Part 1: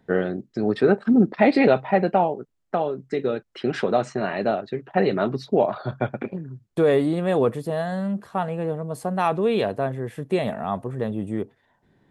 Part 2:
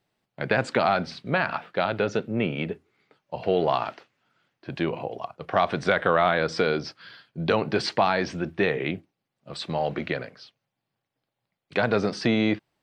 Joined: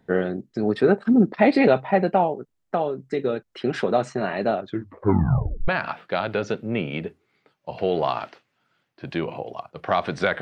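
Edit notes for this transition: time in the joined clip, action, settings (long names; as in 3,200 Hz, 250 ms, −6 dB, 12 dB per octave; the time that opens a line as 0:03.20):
part 1
0:04.59: tape stop 1.09 s
0:05.68: continue with part 2 from 0:01.33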